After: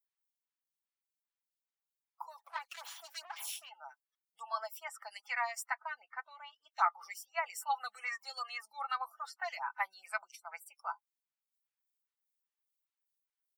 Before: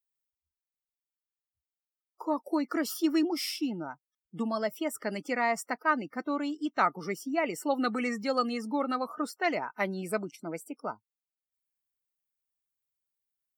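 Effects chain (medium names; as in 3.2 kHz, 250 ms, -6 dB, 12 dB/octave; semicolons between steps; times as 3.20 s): 2.38–3.69 s: comb filter that takes the minimum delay 0.3 ms; elliptic high-pass 820 Hz, stop band 60 dB; comb 6 ms, depth 44%; 5.71–6.72 s: low-pass 2.6 kHz 12 dB/octave; lamp-driven phase shifter 2.5 Hz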